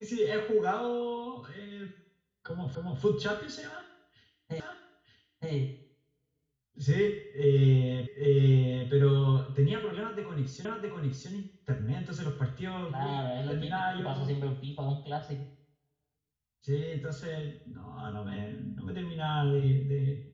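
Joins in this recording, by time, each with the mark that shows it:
2.75 s: repeat of the last 0.27 s
4.60 s: repeat of the last 0.92 s
8.07 s: repeat of the last 0.82 s
10.65 s: repeat of the last 0.66 s

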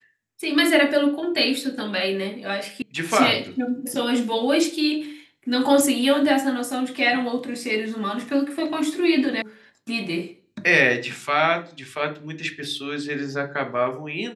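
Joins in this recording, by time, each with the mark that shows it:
2.82 s: sound stops dead
9.42 s: sound stops dead

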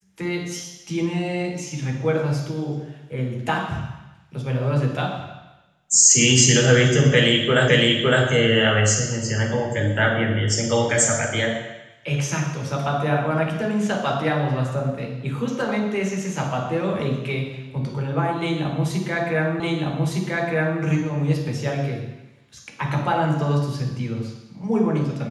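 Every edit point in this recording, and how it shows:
7.68 s: repeat of the last 0.56 s
19.60 s: repeat of the last 1.21 s

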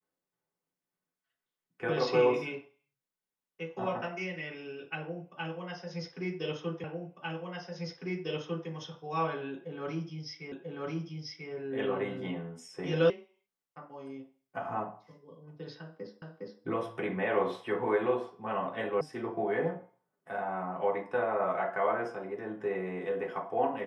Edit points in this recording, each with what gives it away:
6.84 s: repeat of the last 1.85 s
10.52 s: repeat of the last 0.99 s
13.10 s: sound stops dead
16.22 s: repeat of the last 0.41 s
19.01 s: sound stops dead

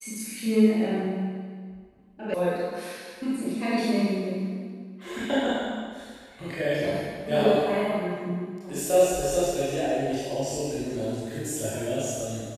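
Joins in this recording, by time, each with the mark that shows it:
2.34 s: sound stops dead

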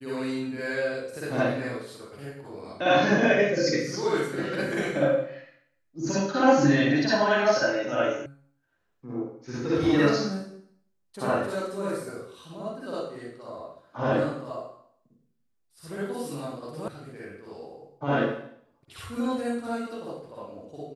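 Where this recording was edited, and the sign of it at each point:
8.26 s: sound stops dead
16.88 s: sound stops dead

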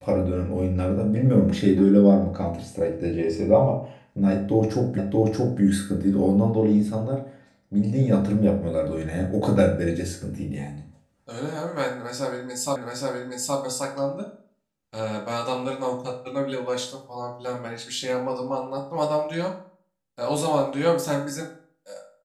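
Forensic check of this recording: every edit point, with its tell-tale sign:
4.98 s: repeat of the last 0.63 s
12.76 s: repeat of the last 0.82 s

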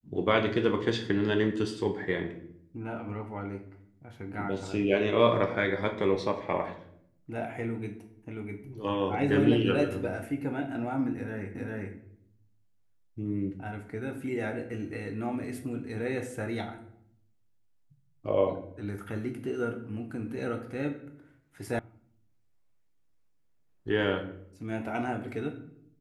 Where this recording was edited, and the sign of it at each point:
11.55 s: repeat of the last 0.4 s
21.79 s: sound stops dead

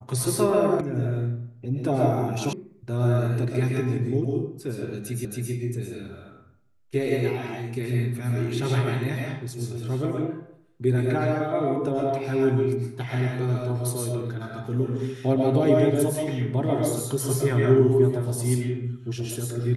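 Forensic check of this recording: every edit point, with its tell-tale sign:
0.81 s: sound stops dead
2.53 s: sound stops dead
5.25 s: repeat of the last 0.27 s

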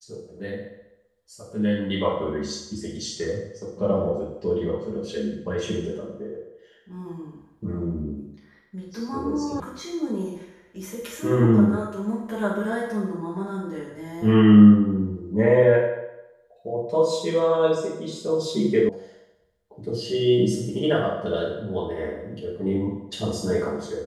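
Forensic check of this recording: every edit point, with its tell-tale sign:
9.60 s: sound stops dead
18.89 s: sound stops dead

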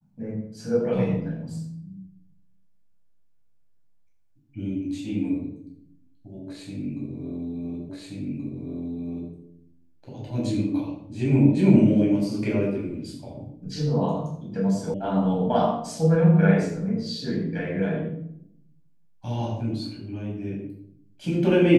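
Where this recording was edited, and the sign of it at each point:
7.89 s: repeat of the last 1.43 s
14.94 s: sound stops dead

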